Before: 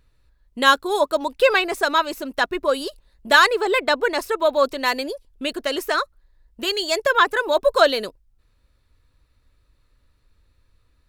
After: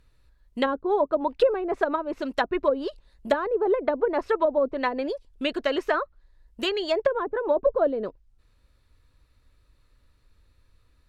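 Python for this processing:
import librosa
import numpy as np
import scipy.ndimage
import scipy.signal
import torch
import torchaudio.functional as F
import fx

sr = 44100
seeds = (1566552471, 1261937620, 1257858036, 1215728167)

y = fx.env_lowpass_down(x, sr, base_hz=470.0, full_db=-15.0)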